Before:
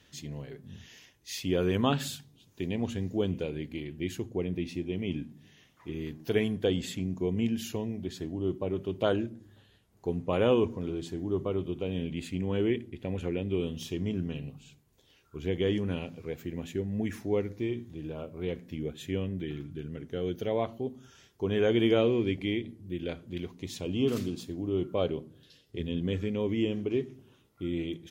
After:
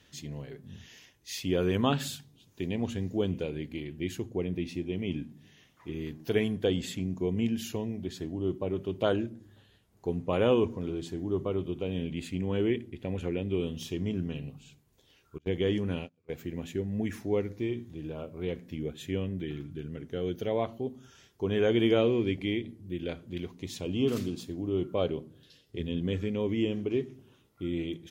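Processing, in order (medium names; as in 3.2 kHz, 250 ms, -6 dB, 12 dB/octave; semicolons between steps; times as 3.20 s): 15.38–16.30 s: gate -34 dBFS, range -28 dB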